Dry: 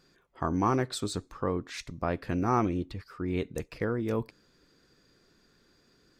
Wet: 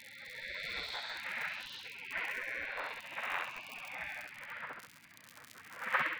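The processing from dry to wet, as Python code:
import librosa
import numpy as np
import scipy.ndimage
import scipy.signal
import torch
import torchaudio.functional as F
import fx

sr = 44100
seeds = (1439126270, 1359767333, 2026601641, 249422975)

p1 = fx.spec_swells(x, sr, rise_s=2.42)
p2 = fx.dmg_wind(p1, sr, seeds[0], corner_hz=520.0, level_db=-31.0)
p3 = fx.ladder_lowpass(p2, sr, hz=2500.0, resonance_pct=25)
p4 = fx.low_shelf(p3, sr, hz=63.0, db=8.0)
p5 = fx.dmg_crackle(p4, sr, seeds[1], per_s=36.0, level_db=-45.0)
p6 = fx.peak_eq(p5, sr, hz=510.0, db=-8.5, octaves=0.28)
p7 = p6 + fx.echo_feedback(p6, sr, ms=67, feedback_pct=53, wet_db=-4, dry=0)
p8 = fx.spec_gate(p7, sr, threshold_db=-25, keep='weak')
p9 = fx.dmg_noise_band(p8, sr, seeds[2], low_hz=86.0, high_hz=290.0, level_db=-80.0)
p10 = fx.upward_expand(p9, sr, threshold_db=-45.0, expansion=2.5)
y = p10 * librosa.db_to_amplitude(15.5)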